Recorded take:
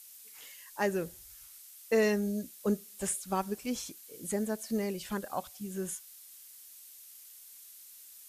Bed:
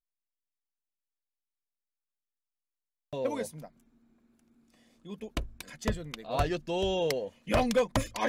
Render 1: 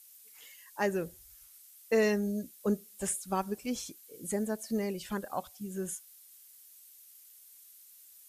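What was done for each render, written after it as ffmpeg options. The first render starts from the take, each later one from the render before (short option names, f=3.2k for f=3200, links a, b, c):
-af "afftdn=nr=6:nf=-53"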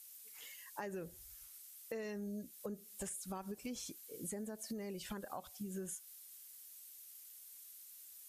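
-af "alimiter=level_in=3.5dB:limit=-24dB:level=0:latency=1:release=58,volume=-3.5dB,acompressor=threshold=-41dB:ratio=6"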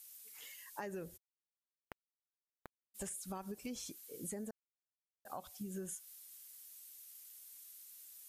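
-filter_complex "[0:a]asplit=3[a][b][c];[a]afade=t=out:st=1.16:d=0.02[d];[b]acrusher=bits=4:mix=0:aa=0.5,afade=t=in:st=1.16:d=0.02,afade=t=out:st=2.94:d=0.02[e];[c]afade=t=in:st=2.94:d=0.02[f];[d][e][f]amix=inputs=3:normalize=0,asplit=3[g][h][i];[g]atrim=end=4.51,asetpts=PTS-STARTPTS,afade=t=out:st=4.506:d=0.004:c=hsin[j];[h]atrim=start=4.51:end=5.25,asetpts=PTS-STARTPTS,volume=0[k];[i]atrim=start=5.25,asetpts=PTS-STARTPTS,afade=t=in:d=0.004:c=hsin[l];[j][k][l]concat=n=3:v=0:a=1"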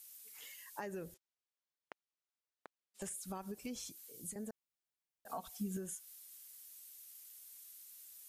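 -filter_complex "[0:a]asettb=1/sr,asplit=3[a][b][c];[a]atrim=end=1.144[d];[b]atrim=start=1.14:end=3.02,asetpts=PTS-STARTPTS,afade=t=in:d=0.004:c=qsin,afade=t=out:st=1.876:d=0.004:c=qsin,highpass=340,lowpass=6.3k[e];[c]atrim=start=3.016[f];[d][e]acrossfade=d=0.004:c1=hsin:c2=qsin[g];[g][f]acrossfade=d=0.004:c1=qsin:c2=hsin,asettb=1/sr,asplit=3[h][i][j];[h]atrim=end=3.844[k];[i]atrim=start=3.84:end=4.36,asetpts=PTS-STARTPTS,afade=t=in:d=0.004:c=qsin,afade=t=out:st=0.516:d=0.004:c=qsin,acrossover=split=170|3000[l][m][n];[m]acompressor=threshold=-59dB:ratio=4:attack=3.2:release=140:knee=2.83:detection=peak[o];[l][o][n]amix=inputs=3:normalize=0[p];[j]atrim=start=4.356[q];[k][p]acrossfade=d=0.004:c1=hsin:c2=qsin[r];[r][q]acrossfade=d=0.004:c1=qsin:c2=hsin,asettb=1/sr,asplit=3[s][t][u];[s]atrim=end=5.284[v];[t]atrim=start=5.28:end=5.77,asetpts=PTS-STARTPTS,afade=t=in:d=0.004:c=qsin,afade=t=out:st=0.486:d=0.004:c=qsin,aecho=1:1:4.4:0.93,atrim=end_sample=21609[w];[u]atrim=start=5.766[x];[v][w]acrossfade=d=0.004:c1=hsin:c2=qsin[y];[y][x]acrossfade=d=0.004:c1=qsin:c2=hsin"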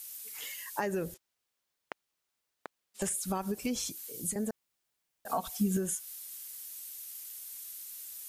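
-af "volume=11dB"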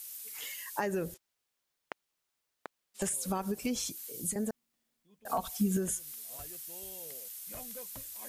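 -filter_complex "[1:a]volume=-23dB[a];[0:a][a]amix=inputs=2:normalize=0"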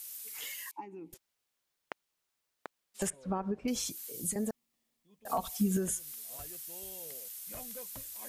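-filter_complex "[0:a]asettb=1/sr,asplit=3[a][b][c];[a]atrim=end=0.714[d];[b]atrim=start=0.71:end=1.13,asetpts=PTS-STARTPTS,afade=t=in:d=0.004:c=qsin,afade=t=out:st=0.416:d=0.004:c=qsin,asplit=3[e][f][g];[e]bandpass=f=300:t=q:w=8,volume=0dB[h];[f]bandpass=f=870:t=q:w=8,volume=-6dB[i];[g]bandpass=f=2.24k:t=q:w=8,volume=-9dB[j];[h][i][j]amix=inputs=3:normalize=0[k];[c]atrim=start=1.126[l];[d][k]acrossfade=d=0.004:c1=hsin:c2=qsin[m];[m][l]acrossfade=d=0.004:c1=qsin:c2=hsin,asettb=1/sr,asplit=3[n][o][p];[n]atrim=end=3.104[q];[o]atrim=start=3.1:end=3.68,asetpts=PTS-STARTPTS,afade=t=in:d=0.004:c=qsin,afade=t=out:st=0.576:d=0.004:c=qsin,lowpass=1.5k[r];[p]atrim=start=3.676[s];[q][r]acrossfade=d=0.004:c1=hsin:c2=qsin[t];[t][s]acrossfade=d=0.004:c1=qsin:c2=hsin,asettb=1/sr,asplit=3[u][v][w];[u]atrim=end=4.354[x];[v]atrim=start=4.35:end=5.59,asetpts=PTS-STARTPTS,afade=t=in:d=0.004:c=qsin,afade=t=out:st=1.236:d=0.004:c=qsin,bandreject=f=1.5k:w=7.9[y];[w]atrim=start=5.586[z];[x][y]acrossfade=d=0.004:c1=hsin:c2=qsin[aa];[aa][z]acrossfade=d=0.004:c1=qsin:c2=hsin"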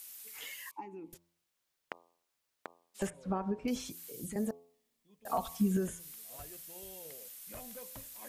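-filter_complex "[0:a]acrossover=split=3300[a][b];[b]acompressor=threshold=-45dB:ratio=4:attack=1:release=60[c];[a][c]amix=inputs=2:normalize=0,bandreject=f=85.52:t=h:w=4,bandreject=f=171.04:t=h:w=4,bandreject=f=256.56:t=h:w=4,bandreject=f=342.08:t=h:w=4,bandreject=f=427.6:t=h:w=4,bandreject=f=513.12:t=h:w=4,bandreject=f=598.64:t=h:w=4,bandreject=f=684.16:t=h:w=4,bandreject=f=769.68:t=h:w=4,bandreject=f=855.2:t=h:w=4,bandreject=f=940.72:t=h:w=4,bandreject=f=1.02624k:t=h:w=4,bandreject=f=1.11176k:t=h:w=4,bandreject=f=1.19728k:t=h:w=4"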